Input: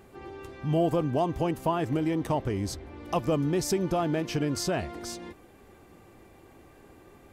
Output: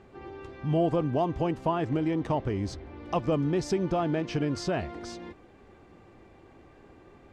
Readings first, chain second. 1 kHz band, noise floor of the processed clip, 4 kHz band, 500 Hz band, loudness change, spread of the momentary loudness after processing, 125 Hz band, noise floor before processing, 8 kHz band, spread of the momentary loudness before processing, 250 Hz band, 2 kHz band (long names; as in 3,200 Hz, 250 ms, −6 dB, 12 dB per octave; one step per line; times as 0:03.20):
−0.5 dB, −55 dBFS, −3.5 dB, −0.5 dB, 0.0 dB, 16 LU, 0.0 dB, −55 dBFS, −8.5 dB, 13 LU, 0.0 dB, −1.0 dB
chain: high-frequency loss of the air 110 metres